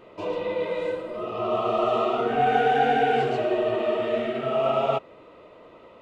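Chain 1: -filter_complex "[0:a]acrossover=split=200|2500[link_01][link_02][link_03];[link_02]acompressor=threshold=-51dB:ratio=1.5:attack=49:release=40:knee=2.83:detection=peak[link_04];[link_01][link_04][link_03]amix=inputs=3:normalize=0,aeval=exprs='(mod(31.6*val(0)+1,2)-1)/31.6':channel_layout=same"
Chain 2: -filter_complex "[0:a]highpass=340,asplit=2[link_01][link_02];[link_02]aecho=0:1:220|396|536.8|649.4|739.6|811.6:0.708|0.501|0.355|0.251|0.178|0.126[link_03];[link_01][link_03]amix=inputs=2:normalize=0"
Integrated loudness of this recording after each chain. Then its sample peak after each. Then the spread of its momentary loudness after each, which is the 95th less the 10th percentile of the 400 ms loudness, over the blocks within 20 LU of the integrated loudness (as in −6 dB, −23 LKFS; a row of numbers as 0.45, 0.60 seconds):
−33.5, −22.5 LKFS; −30.0, −7.0 dBFS; 17, 10 LU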